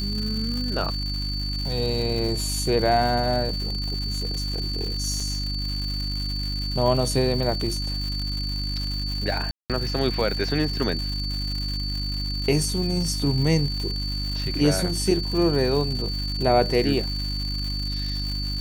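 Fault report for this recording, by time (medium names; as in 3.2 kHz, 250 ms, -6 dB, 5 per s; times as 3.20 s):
crackle 290 per s -30 dBFS
hum 50 Hz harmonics 6 -29 dBFS
whine 4.5 kHz -30 dBFS
5.20 s: dropout 4 ms
9.51–9.70 s: dropout 187 ms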